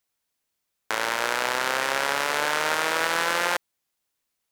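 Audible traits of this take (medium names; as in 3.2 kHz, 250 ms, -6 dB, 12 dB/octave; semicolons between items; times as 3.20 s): noise floor -80 dBFS; spectral tilt -2.0 dB/octave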